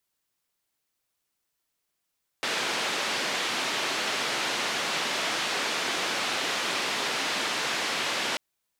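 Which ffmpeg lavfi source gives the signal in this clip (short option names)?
-f lavfi -i "anoisesrc=c=white:d=5.94:r=44100:seed=1,highpass=f=240,lowpass=f=3800,volume=-16.6dB"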